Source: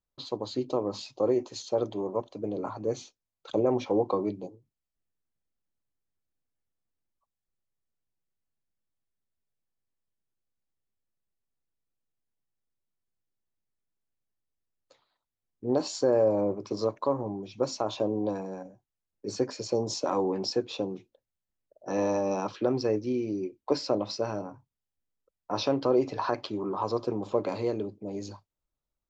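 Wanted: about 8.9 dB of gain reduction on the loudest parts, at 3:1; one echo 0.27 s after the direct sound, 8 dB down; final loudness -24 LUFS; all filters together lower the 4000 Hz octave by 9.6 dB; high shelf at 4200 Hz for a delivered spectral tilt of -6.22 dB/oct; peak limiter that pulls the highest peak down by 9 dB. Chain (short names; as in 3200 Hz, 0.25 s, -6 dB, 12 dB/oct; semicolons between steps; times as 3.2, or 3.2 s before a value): bell 4000 Hz -8 dB; high shelf 4200 Hz -6.5 dB; compressor 3:1, threshold -32 dBFS; limiter -27.5 dBFS; echo 0.27 s -8 dB; gain +14.5 dB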